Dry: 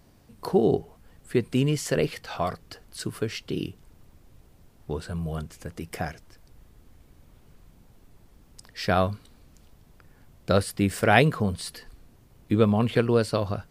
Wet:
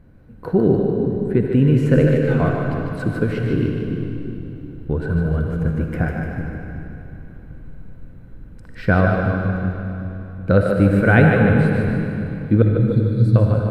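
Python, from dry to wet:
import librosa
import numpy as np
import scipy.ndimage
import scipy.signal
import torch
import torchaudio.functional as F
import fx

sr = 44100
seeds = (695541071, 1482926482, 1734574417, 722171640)

p1 = fx.curve_eq(x, sr, hz=(120.0, 300.0, 470.0, 1100.0, 2300.0, 4800.0, 13000.0), db=(0, -4, -16, -11, -12, -29, -24))
p2 = fx.rider(p1, sr, range_db=3, speed_s=0.5)
p3 = p1 + (p2 * 10.0 ** (-0.5 / 20.0))
p4 = fx.small_body(p3, sr, hz=(500.0, 1500.0, 4000.0), ring_ms=35, db=14)
p5 = fx.brickwall_bandstop(p4, sr, low_hz=200.0, high_hz=3300.0, at=(12.62, 13.36))
p6 = p5 + fx.echo_split(p5, sr, split_hz=320.0, low_ms=375, high_ms=150, feedback_pct=52, wet_db=-5.0, dry=0)
p7 = fx.rev_freeverb(p6, sr, rt60_s=3.0, hf_ratio=0.9, predelay_ms=20, drr_db=3.0)
y = p7 * 10.0 ** (5.0 / 20.0)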